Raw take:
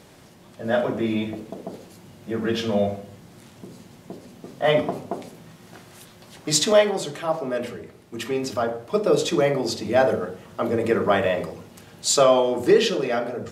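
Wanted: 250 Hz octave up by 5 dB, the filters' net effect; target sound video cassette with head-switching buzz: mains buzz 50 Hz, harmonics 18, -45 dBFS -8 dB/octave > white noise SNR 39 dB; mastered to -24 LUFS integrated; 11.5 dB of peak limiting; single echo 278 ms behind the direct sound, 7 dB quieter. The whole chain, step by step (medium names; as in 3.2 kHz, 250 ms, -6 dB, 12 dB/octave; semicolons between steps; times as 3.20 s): peaking EQ 250 Hz +6.5 dB; peak limiter -15 dBFS; delay 278 ms -7 dB; mains buzz 50 Hz, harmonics 18, -45 dBFS -8 dB/octave; white noise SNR 39 dB; trim +1 dB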